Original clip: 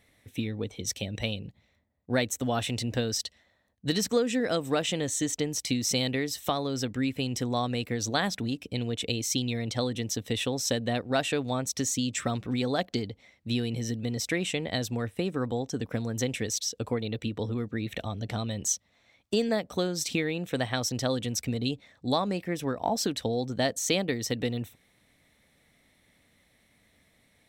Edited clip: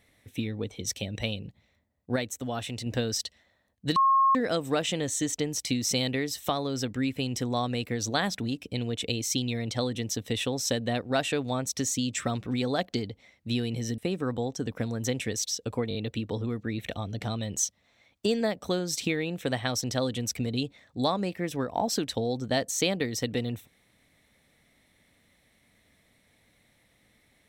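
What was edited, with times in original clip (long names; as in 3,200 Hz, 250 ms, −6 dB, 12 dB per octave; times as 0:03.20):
0:02.16–0:02.86: clip gain −4.5 dB
0:03.96–0:04.35: beep over 1,080 Hz −18 dBFS
0:13.98–0:15.12: remove
0:17.03: stutter 0.02 s, 4 plays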